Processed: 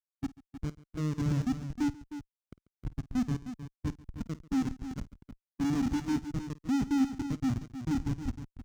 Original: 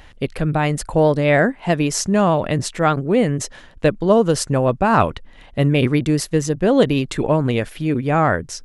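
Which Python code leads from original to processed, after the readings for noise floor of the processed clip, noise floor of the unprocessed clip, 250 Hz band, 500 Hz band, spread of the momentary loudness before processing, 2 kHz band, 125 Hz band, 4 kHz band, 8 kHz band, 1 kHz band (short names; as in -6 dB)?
under -85 dBFS, -44 dBFS, -11.5 dB, -32.0 dB, 6 LU, -23.5 dB, -15.0 dB, -20.0 dB, -22.5 dB, -23.5 dB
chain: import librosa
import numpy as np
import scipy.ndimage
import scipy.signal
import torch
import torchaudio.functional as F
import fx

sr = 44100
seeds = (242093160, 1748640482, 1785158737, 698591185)

p1 = fx.vowel_filter(x, sr, vowel='i')
p2 = fx.schmitt(p1, sr, flips_db=-25.0)
p3 = p2 + fx.echo_multitap(p2, sr, ms=(52, 140, 311), db=(-15.0, -15.0, -8.0), dry=0)
p4 = fx.dynamic_eq(p3, sr, hz=6200.0, q=1.4, threshold_db=-59.0, ratio=4.0, max_db=7)
p5 = fx.highpass(p4, sr, hz=40.0, slope=6)
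p6 = fx.peak_eq(p5, sr, hz=550.0, db=-6.0, octaves=1.1)
p7 = 10.0 ** (-23.0 / 20.0) * np.tanh(p6 / 10.0 ** (-23.0 / 20.0))
p8 = fx.spectral_expand(p7, sr, expansion=1.5)
y = p8 * 10.0 ** (4.0 / 20.0)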